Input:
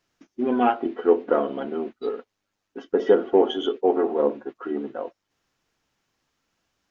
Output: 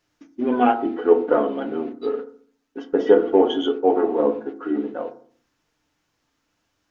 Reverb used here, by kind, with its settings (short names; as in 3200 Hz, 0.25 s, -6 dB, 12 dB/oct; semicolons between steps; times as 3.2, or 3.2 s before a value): FDN reverb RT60 0.49 s, low-frequency decay 1.45×, high-frequency decay 0.35×, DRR 6.5 dB; gain +1.5 dB